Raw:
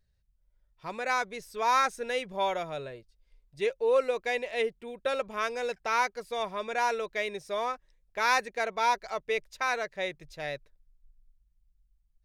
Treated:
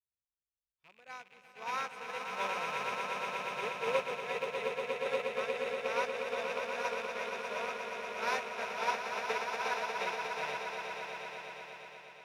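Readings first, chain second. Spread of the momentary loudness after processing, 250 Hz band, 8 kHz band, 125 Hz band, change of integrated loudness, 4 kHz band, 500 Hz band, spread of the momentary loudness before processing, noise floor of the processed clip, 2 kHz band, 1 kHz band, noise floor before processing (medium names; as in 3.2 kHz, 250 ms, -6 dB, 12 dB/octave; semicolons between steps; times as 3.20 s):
10 LU, -6.5 dB, -6.0 dB, no reading, -5.5 dB, -4.0 dB, -5.5 dB, 11 LU, under -85 dBFS, -4.0 dB, -6.0 dB, -72 dBFS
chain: rattle on loud lows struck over -50 dBFS, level -20 dBFS; high-pass 68 Hz; echo with a slow build-up 119 ms, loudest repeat 8, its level -5 dB; upward expansion 2.5:1, over -35 dBFS; trim -7.5 dB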